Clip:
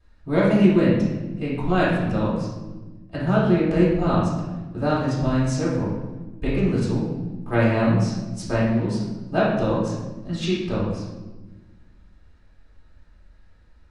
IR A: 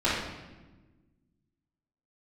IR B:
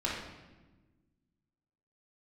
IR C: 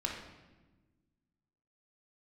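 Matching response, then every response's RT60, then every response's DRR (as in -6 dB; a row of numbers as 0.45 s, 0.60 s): A; 1.2 s, 1.2 s, 1.2 s; -12.5 dB, -6.5 dB, -1.5 dB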